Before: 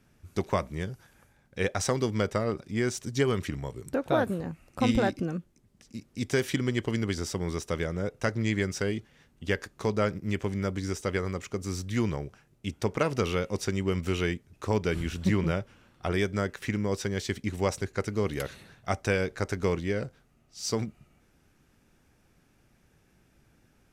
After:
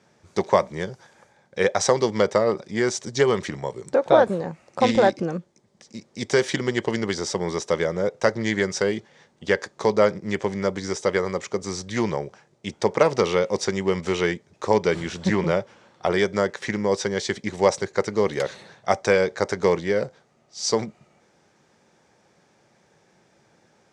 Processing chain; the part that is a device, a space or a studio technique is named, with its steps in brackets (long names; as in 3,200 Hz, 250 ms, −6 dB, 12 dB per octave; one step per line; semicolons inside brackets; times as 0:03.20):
full-range speaker at full volume (highs frequency-modulated by the lows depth 0.11 ms; loudspeaker in its box 210–7,600 Hz, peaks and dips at 270 Hz −10 dB, 550 Hz +4 dB, 880 Hz +4 dB, 1,400 Hz −4 dB, 2,700 Hz −7 dB)
level +8.5 dB